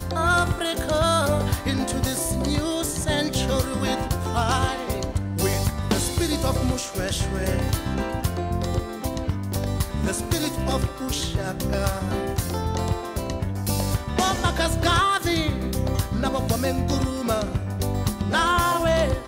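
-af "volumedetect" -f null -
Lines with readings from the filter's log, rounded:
mean_volume: -23.7 dB
max_volume: -10.1 dB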